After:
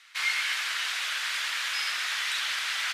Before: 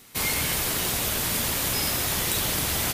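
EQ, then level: resonant high-pass 1500 Hz, resonance Q 2; LPF 3500 Hz 12 dB/oct; high shelf 2100 Hz +11 dB; -6.0 dB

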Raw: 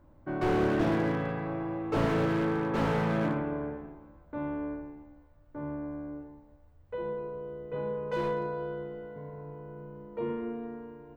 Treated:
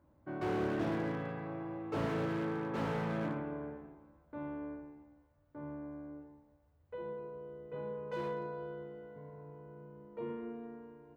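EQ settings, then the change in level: HPF 67 Hz; -7.5 dB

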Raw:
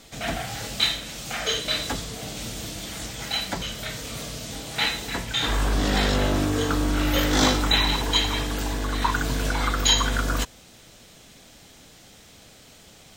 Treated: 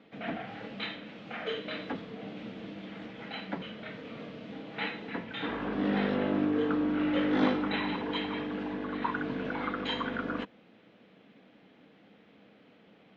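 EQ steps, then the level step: speaker cabinet 180–2800 Hz, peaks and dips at 200 Hz +10 dB, 290 Hz +7 dB, 470 Hz +6 dB; -8.5 dB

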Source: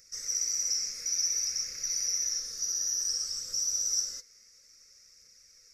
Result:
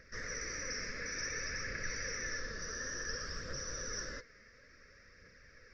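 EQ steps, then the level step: air absorption 200 m; tape spacing loss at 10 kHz 32 dB; bell 1700 Hz +12 dB 0.27 oct; +15.5 dB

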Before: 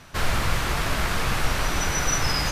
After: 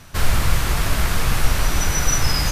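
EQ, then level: low shelf 150 Hz +8.5 dB; high shelf 7000 Hz +10 dB; 0.0 dB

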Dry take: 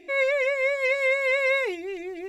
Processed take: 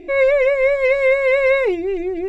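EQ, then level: tilt -3.5 dB/oct; notch 1800 Hz, Q 21; +7.0 dB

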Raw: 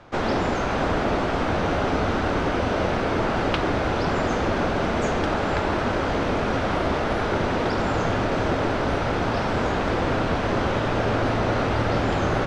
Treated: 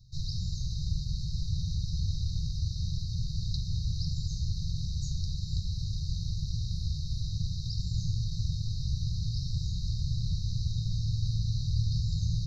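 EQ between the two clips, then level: brick-wall FIR band-stop 170–3700 Hz; fixed phaser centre 2000 Hz, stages 8; 0.0 dB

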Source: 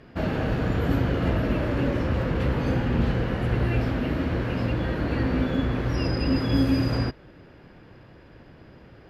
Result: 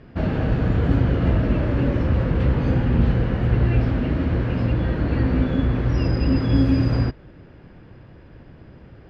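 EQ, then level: air absorption 79 m; low shelf 220 Hz +7.5 dB; 0.0 dB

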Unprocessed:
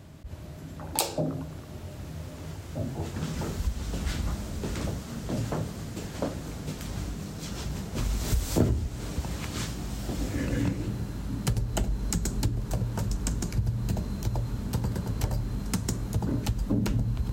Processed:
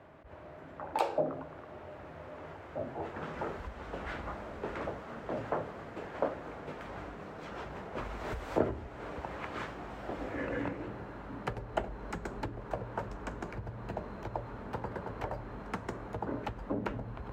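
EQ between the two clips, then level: three-band isolator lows -19 dB, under 400 Hz, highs -21 dB, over 2300 Hz; high shelf 5500 Hz -11.5 dB; +3.5 dB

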